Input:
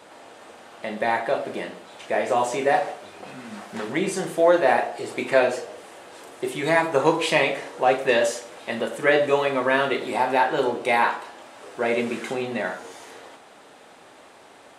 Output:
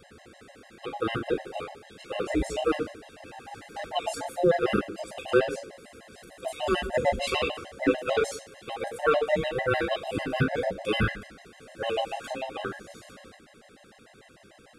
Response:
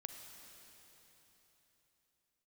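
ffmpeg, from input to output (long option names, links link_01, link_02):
-af "afftfilt=real='real(if(between(b,1,1008),(2*floor((b-1)/48)+1)*48-b,b),0)':imag='imag(if(between(b,1,1008),(2*floor((b-1)/48)+1)*48-b,b),0)*if(between(b,1,1008),-1,1)':win_size=2048:overlap=0.75,afftfilt=real='re*gt(sin(2*PI*6.7*pts/sr)*(1-2*mod(floor(b*sr/1024/540),2)),0)':imag='im*gt(sin(2*PI*6.7*pts/sr)*(1-2*mod(floor(b*sr/1024/540),2)),0)':win_size=1024:overlap=0.75,volume=-2.5dB"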